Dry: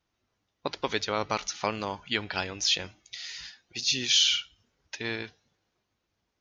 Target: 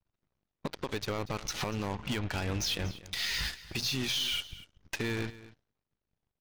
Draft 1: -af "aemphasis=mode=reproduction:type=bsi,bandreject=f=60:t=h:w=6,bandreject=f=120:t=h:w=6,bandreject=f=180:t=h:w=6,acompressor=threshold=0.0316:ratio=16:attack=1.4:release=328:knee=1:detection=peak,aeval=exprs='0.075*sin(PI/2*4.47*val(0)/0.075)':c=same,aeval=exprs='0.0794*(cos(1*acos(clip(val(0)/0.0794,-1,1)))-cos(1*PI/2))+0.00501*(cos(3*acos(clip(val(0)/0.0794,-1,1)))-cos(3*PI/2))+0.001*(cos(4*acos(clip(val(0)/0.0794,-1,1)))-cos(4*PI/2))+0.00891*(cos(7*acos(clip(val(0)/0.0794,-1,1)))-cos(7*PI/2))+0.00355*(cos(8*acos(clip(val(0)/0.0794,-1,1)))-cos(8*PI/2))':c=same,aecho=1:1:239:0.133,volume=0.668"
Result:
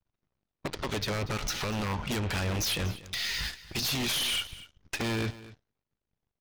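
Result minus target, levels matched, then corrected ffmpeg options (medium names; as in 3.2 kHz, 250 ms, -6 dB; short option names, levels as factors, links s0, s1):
compression: peak gain reduction -6.5 dB
-af "aemphasis=mode=reproduction:type=bsi,bandreject=f=60:t=h:w=6,bandreject=f=120:t=h:w=6,bandreject=f=180:t=h:w=6,acompressor=threshold=0.0141:ratio=16:attack=1.4:release=328:knee=1:detection=peak,aeval=exprs='0.075*sin(PI/2*4.47*val(0)/0.075)':c=same,aeval=exprs='0.0794*(cos(1*acos(clip(val(0)/0.0794,-1,1)))-cos(1*PI/2))+0.00501*(cos(3*acos(clip(val(0)/0.0794,-1,1)))-cos(3*PI/2))+0.001*(cos(4*acos(clip(val(0)/0.0794,-1,1)))-cos(4*PI/2))+0.00891*(cos(7*acos(clip(val(0)/0.0794,-1,1)))-cos(7*PI/2))+0.00355*(cos(8*acos(clip(val(0)/0.0794,-1,1)))-cos(8*PI/2))':c=same,aecho=1:1:239:0.133,volume=0.668"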